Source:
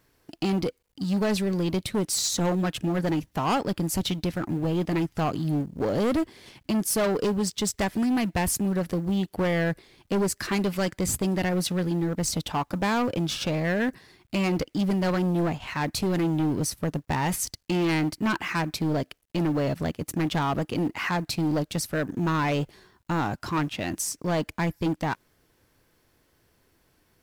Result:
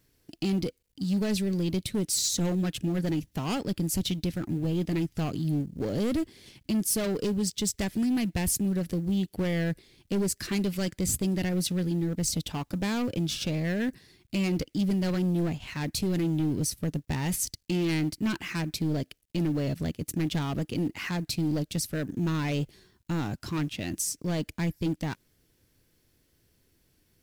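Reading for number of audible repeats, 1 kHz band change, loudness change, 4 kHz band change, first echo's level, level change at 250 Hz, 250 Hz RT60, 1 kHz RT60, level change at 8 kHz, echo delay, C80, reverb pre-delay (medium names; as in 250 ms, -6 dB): no echo, -11.0 dB, -2.5 dB, -2.0 dB, no echo, -2.0 dB, no reverb, no reverb, -0.5 dB, no echo, no reverb, no reverb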